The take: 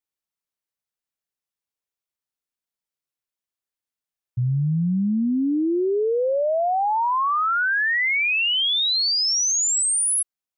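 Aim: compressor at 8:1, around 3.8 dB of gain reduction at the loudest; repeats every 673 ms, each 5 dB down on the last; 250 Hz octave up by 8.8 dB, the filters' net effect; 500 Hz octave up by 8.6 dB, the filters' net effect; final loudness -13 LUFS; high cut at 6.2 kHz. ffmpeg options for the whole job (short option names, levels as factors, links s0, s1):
-af "lowpass=6200,equalizer=f=250:t=o:g=9,equalizer=f=500:t=o:g=8,acompressor=threshold=0.2:ratio=8,aecho=1:1:673|1346|2019|2692|3365|4038|4711:0.562|0.315|0.176|0.0988|0.0553|0.031|0.0173,volume=1.58"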